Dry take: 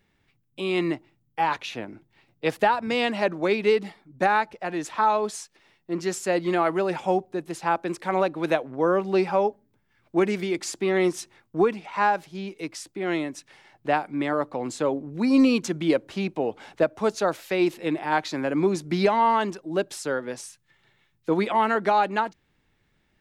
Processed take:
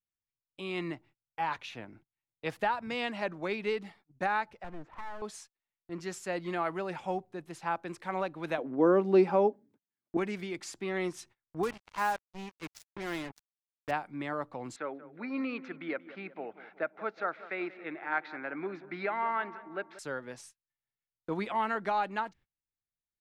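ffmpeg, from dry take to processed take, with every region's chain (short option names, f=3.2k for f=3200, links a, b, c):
-filter_complex "[0:a]asettb=1/sr,asplit=3[a][b][c];[a]atrim=end=4.644[d];[b]atrim=start=4.64:end=5.22,asetpts=PTS-STARTPTS,afade=t=in:d=0.004:c=qsin,afade=t=out:st=0.576:d=0.004:c=qsin,lowpass=1.1k,acompressor=threshold=-25dB:ratio=10:attack=3.2:release=140:knee=1:detection=peak,aeval=exprs='clip(val(0),-1,0.0075)':c=same[e];[c]atrim=start=5.216[f];[d][e]acrossfade=d=0.004:c1=hsin:c2=qsin[g];[g][f]acrossfade=d=0.004:c1=qsin:c2=hsin,asettb=1/sr,asplit=3[h][i][j];[h]atrim=end=8.584[k];[i]atrim=start=8.58:end=10.17,asetpts=PTS-STARTPTS,afade=t=in:d=0.004:c=qsin,afade=t=out:st=1.586:d=0.004:c=qsin,highpass=180,equalizer=f=290:t=o:w=1.9:g=14.5[l];[j]atrim=start=10.166[m];[k][l]acrossfade=d=0.004:c1=hsin:c2=qsin[n];[n][m]acrossfade=d=0.004:c1=qsin:c2=hsin,asettb=1/sr,asplit=3[o][p][q];[o]atrim=end=11.634[r];[p]atrim=start=11.63:end=13.91,asetpts=PTS-STARTPTS,afade=t=in:d=0.004:c=qsin,afade=t=out:st=2.276:d=0.004:c=qsin,highpass=77,acrusher=bits=4:mix=0:aa=0.5[s];[q]atrim=start=13.906[t];[r][s]acrossfade=d=0.004:c1=hsin:c2=qsin[u];[u][t]acrossfade=d=0.004:c1=qsin:c2=hsin,asettb=1/sr,asplit=3[v][w][x];[v]atrim=end=14.764[y];[w]atrim=start=14.76:end=19.99,asetpts=PTS-STARTPTS,afade=t=in:d=0.004:c=qsin,afade=t=out:st=5.226:d=0.004:c=qsin,highpass=340,equalizer=f=510:t=q:w=4:g=-4,equalizer=f=990:t=q:w=4:g=-6,equalizer=f=1.4k:t=q:w=4:g=7,equalizer=f=2.1k:t=q:w=4:g=5,equalizer=f=3k:t=q:w=4:g=-8,lowpass=f=3.2k:w=0.5412,lowpass=f=3.2k:w=1.3066,asplit=2[z][aa];[aa]adelay=184,lowpass=f=2k:p=1,volume=-15dB,asplit=2[ab][ac];[ac]adelay=184,lowpass=f=2k:p=1,volume=0.55,asplit=2[ad][ae];[ae]adelay=184,lowpass=f=2k:p=1,volume=0.55,asplit=2[af][ag];[ag]adelay=184,lowpass=f=2k:p=1,volume=0.55,asplit=2[ah][ai];[ai]adelay=184,lowpass=f=2k:p=1,volume=0.55[aj];[z][ab][ad][af][ah][aj]amix=inputs=6:normalize=0,atrim=end_sample=230643[ak];[x]atrim=start=19.986[al];[y][ak]acrossfade=d=0.004:c1=hsin:c2=qsin[am];[am][al]acrossfade=d=0.004:c1=qsin:c2=hsin,highshelf=f=2.4k:g=-9.5,agate=range=-28dB:threshold=-48dB:ratio=16:detection=peak,equalizer=f=370:t=o:w=2.7:g=-9.5,volume=-2.5dB"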